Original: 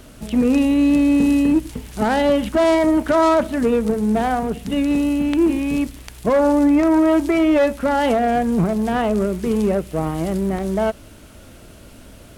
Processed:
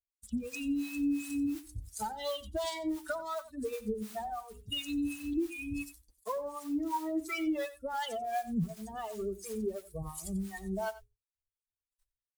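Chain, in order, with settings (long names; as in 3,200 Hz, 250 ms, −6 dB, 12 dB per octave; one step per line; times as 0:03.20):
spectral dynamics exaggerated over time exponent 3
mains-hum notches 60/120/180/240/300/360/420 Hz
downward expander −45 dBFS
octave-band graphic EQ 1,000/4,000/8,000 Hz +11/+11/+12 dB
in parallel at 0 dB: brickwall limiter −24 dBFS, peak gain reduction 22 dB
on the sum: downward compressor 6 to 1, threshold −26 dBFS, peak gain reduction 17.5 dB
flanger 0.48 Hz, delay 1.3 ms, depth 1.6 ms, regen −69%
noise that follows the level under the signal 22 dB
two-band tremolo in antiphase 2.8 Hz, depth 100%, crossover 590 Hz
on a send: single-tap delay 91 ms −16 dB
on the sum: level +2 dB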